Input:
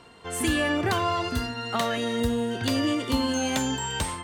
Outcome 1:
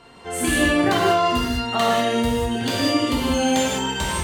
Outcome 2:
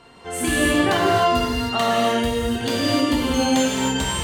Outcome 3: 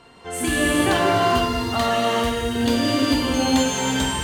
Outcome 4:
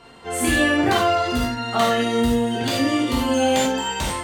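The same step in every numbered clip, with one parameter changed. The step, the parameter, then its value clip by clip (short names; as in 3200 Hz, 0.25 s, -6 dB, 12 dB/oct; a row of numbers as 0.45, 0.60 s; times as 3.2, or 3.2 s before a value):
non-linear reverb, gate: 0.22, 0.33, 0.5, 0.11 s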